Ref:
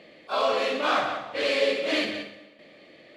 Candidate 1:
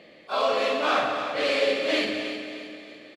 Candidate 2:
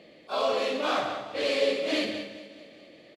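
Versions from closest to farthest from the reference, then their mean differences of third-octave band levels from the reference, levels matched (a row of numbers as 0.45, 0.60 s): 2, 1; 2.0, 3.5 dB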